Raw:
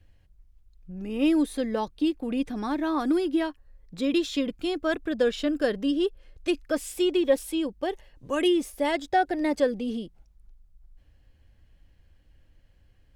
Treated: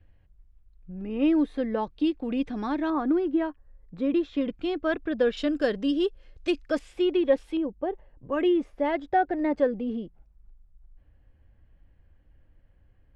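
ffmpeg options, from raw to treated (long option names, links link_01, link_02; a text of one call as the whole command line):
ffmpeg -i in.wav -af "asetnsamples=nb_out_samples=441:pad=0,asendcmd='1.9 lowpass f 3900;2.9 lowpass f 1600;4.41 lowpass f 2900;5.37 lowpass f 6000;6.79 lowpass f 2600;7.57 lowpass f 1100;8.32 lowpass f 1800',lowpass=2300" out.wav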